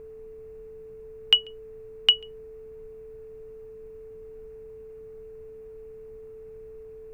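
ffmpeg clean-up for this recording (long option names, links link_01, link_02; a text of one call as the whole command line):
ffmpeg -i in.wav -af "bandreject=frequency=56.7:width_type=h:width=4,bandreject=frequency=113.4:width_type=h:width=4,bandreject=frequency=170.1:width_type=h:width=4,bandreject=frequency=226.8:width_type=h:width=4,bandreject=frequency=283.5:width_type=h:width=4,bandreject=frequency=340.2:width_type=h:width=4,bandreject=frequency=440:width=30,afftdn=noise_reduction=30:noise_floor=-44" out.wav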